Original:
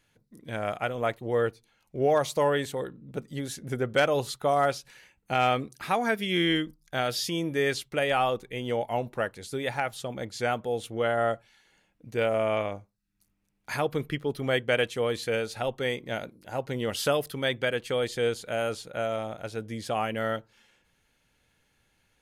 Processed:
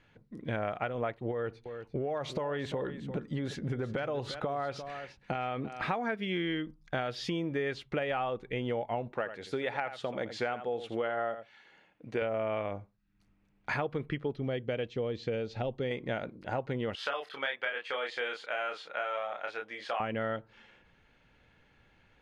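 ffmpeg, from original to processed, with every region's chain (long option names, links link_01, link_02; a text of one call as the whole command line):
ffmpeg -i in.wav -filter_complex "[0:a]asettb=1/sr,asplit=3[link_01][link_02][link_03];[link_01]atrim=end=1.314[link_04];[link_02]atrim=start=1.31:end=5.86,asetpts=PTS-STARTPTS,afade=type=in:duration=0.004:curve=qsin,afade=type=out:start_time=4.546:duration=0.004:curve=qsin,acompressor=threshold=-31dB:ratio=5:attack=3.2:release=140:knee=1:detection=peak,aecho=1:1:346:0.188,atrim=end_sample=200655[link_05];[link_03]atrim=start=5.856[link_06];[link_04][link_05]acrossfade=duration=0.004:curve1=hsin:curve2=qsin[link_07];[link_07][link_06]acrossfade=duration=0.004:curve1=qsin:curve2=hsin,asettb=1/sr,asplit=3[link_08][link_09][link_10];[link_08]atrim=end=9.124[link_11];[link_09]atrim=start=9.12:end=12.22,asetpts=PTS-STARTPTS,afade=type=in:duration=0.004:curve=qsin,afade=type=out:start_time=3.096:duration=0.004:curve=qsin,highpass=frequency=340:poles=1,aecho=1:1:83:0.224,atrim=end_sample=136710[link_12];[link_10]atrim=start=12.216[link_13];[link_11][link_12]acrossfade=duration=0.004:curve1=hsin:curve2=qsin[link_14];[link_14][link_13]acrossfade=duration=0.004:curve1=qsin:curve2=hsin,asettb=1/sr,asplit=3[link_15][link_16][link_17];[link_15]atrim=end=14.364[link_18];[link_16]atrim=start=14.36:end=15.91,asetpts=PTS-STARTPTS,afade=type=in:duration=0.004:curve=qsin,afade=type=out:start_time=1.546:duration=0.004:curve=qsin,lowpass=frequency=6500:width=0.5412,lowpass=frequency=6500:width=1.3066,equalizer=frequency=1400:width_type=o:width=2.1:gain=-12[link_19];[link_17]atrim=start=15.906[link_20];[link_18][link_19]acrossfade=duration=0.004:curve1=hsin:curve2=qsin[link_21];[link_21][link_20]acrossfade=duration=0.004:curve1=qsin:curve2=hsin,asettb=1/sr,asplit=3[link_22][link_23][link_24];[link_22]atrim=end=16.954[link_25];[link_23]atrim=start=16.95:end=20,asetpts=PTS-STARTPTS,afade=type=in:duration=0.004:curve=qsin,afade=type=out:start_time=3.046:duration=0.004:curve=qsin,highpass=1000,highshelf=frequency=4800:gain=-9.5,asplit=2[link_26][link_27];[link_27]adelay=29,volume=-3dB[link_28];[link_26][link_28]amix=inputs=2:normalize=0,atrim=end_sample=134505[link_29];[link_24]atrim=start=19.996[link_30];[link_25][link_29]acrossfade=duration=0.004:curve1=hsin:curve2=qsin[link_31];[link_31][link_30]acrossfade=duration=0.004:curve1=qsin:curve2=hsin,lowpass=2700,acompressor=threshold=-37dB:ratio=6,volume=6.5dB" out.wav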